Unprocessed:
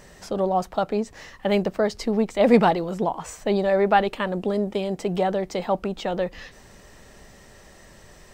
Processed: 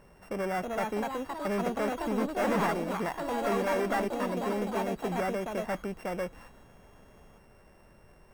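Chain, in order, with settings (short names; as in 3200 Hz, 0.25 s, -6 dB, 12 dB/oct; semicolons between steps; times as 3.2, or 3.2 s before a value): sample sorter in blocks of 16 samples; overloaded stage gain 19.5 dB; echoes that change speed 0.372 s, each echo +3 st, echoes 3; resonant high shelf 2200 Hz -9 dB, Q 1.5; gain -7.5 dB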